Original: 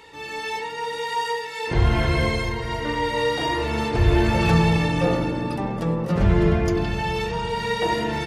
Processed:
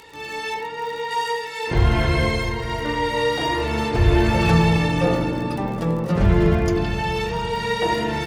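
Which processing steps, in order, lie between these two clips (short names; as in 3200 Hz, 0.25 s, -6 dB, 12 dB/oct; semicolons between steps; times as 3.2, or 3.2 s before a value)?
0.54–1.11 LPF 2700 Hz 6 dB/oct; crackle 46/s -32 dBFS; gain +1.5 dB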